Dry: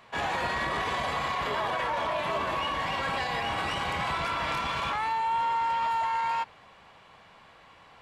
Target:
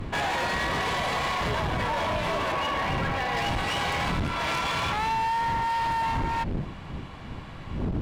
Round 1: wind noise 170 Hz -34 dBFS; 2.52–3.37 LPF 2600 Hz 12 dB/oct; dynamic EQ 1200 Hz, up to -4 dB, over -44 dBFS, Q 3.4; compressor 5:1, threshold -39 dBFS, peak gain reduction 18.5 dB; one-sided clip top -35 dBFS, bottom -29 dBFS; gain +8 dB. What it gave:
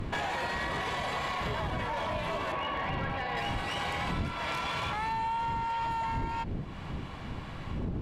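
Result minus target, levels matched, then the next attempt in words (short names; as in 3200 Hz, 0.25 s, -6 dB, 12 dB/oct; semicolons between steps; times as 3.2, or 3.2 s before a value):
compressor: peak gain reduction +8 dB
wind noise 170 Hz -34 dBFS; 2.52–3.37 LPF 2600 Hz 12 dB/oct; dynamic EQ 1200 Hz, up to -4 dB, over -44 dBFS, Q 3.4; compressor 5:1, threshold -29 dBFS, peak gain reduction 10.5 dB; one-sided clip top -35 dBFS, bottom -29 dBFS; gain +8 dB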